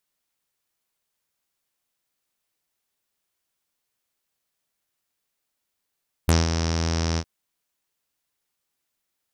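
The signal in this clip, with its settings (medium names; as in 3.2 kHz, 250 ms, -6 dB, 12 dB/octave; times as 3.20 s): synth note saw E2 12 dB/octave, low-pass 5.6 kHz, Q 6.9, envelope 1.5 oct, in 0.05 s, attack 5.4 ms, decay 0.18 s, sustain -8 dB, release 0.06 s, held 0.90 s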